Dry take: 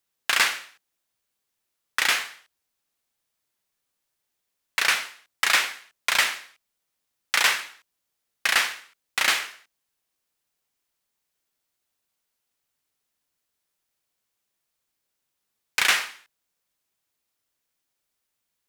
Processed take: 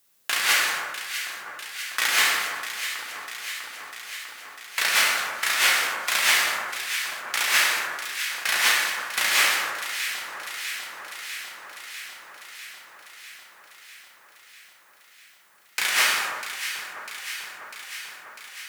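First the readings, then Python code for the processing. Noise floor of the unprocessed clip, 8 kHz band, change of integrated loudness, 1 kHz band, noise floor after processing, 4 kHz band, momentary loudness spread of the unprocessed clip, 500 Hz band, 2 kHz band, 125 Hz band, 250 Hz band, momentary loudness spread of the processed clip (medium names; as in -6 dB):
-80 dBFS, +5.0 dB, -0.5 dB, +3.0 dB, -56 dBFS, +3.0 dB, 16 LU, +3.5 dB, +3.0 dB, no reading, +2.5 dB, 19 LU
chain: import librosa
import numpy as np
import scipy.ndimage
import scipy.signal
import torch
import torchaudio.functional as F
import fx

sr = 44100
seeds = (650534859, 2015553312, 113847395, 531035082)

y = scipy.signal.sosfilt(scipy.signal.butter(2, 74.0, 'highpass', fs=sr, output='sos'), x)
y = fx.high_shelf(y, sr, hz=7600.0, db=7.0)
y = fx.over_compress(y, sr, threshold_db=-28.0, ratio=-1.0)
y = fx.echo_alternate(y, sr, ms=324, hz=1500.0, feedback_pct=84, wet_db=-8.0)
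y = fx.rev_plate(y, sr, seeds[0], rt60_s=1.5, hf_ratio=0.6, predelay_ms=0, drr_db=1.0)
y = fx.sustainer(y, sr, db_per_s=41.0)
y = F.gain(torch.from_numpy(y), 4.0).numpy()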